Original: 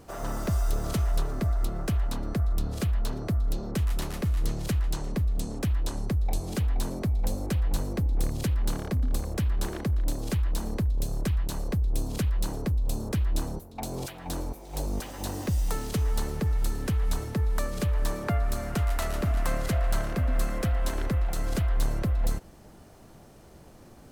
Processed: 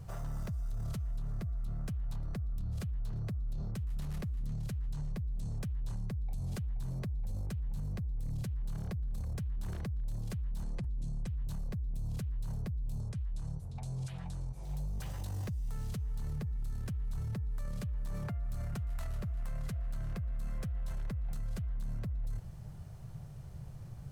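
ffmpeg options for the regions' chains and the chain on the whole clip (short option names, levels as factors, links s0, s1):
-filter_complex "[0:a]asettb=1/sr,asplit=3[s0][s1][s2];[s0]atrim=end=10.634[s3];[s1]atrim=start=10.63:end=11.27,asetpts=PTS-STARTPTS,afade=t=in:d=0.004:c=qsin,afade=t=out:st=0.636:d=0.004:c=qsin,lowpass=f=9700:w=0.5412,lowpass=f=9700:w=1.3066,aecho=1:1:5.8:0.85,atrim=end_sample=28224[s4];[s2]atrim=start=11.266[s5];[s3][s4]acrossfade=d=0.004:c1=hsin:c2=qsin[s6];[s6][s5]acrossfade=d=0.004:c1=qsin:c2=hsin,asettb=1/sr,asplit=3[s7][s8][s9];[s7]atrim=end=13.004[s10];[s8]atrim=start=13:end=14.63,asetpts=PTS-STARTPTS,afade=t=in:d=0.004:c=qsin,afade=t=out:st=1.626:d=0.004:c=qsin,lowpass=f=9700:w=0.5412,lowpass=f=9700:w=1.3066,highshelf=f=5300:g=4.5,acompressor=threshold=0.0112:ratio=5:attack=3.2:release=140:knee=1:detection=peak[s11];[s9]atrim=start=14.626[s12];[s10][s11]acrossfade=d=0.004:c1=hsin:c2=qsin[s13];[s13][s12]acrossfade=d=0.004:c1=qsin:c2=hsin,lowshelf=f=190:t=q:w=3:g=12,alimiter=level_in=1.12:limit=0.0631:level=0:latency=1:release=15,volume=0.891,volume=0.447"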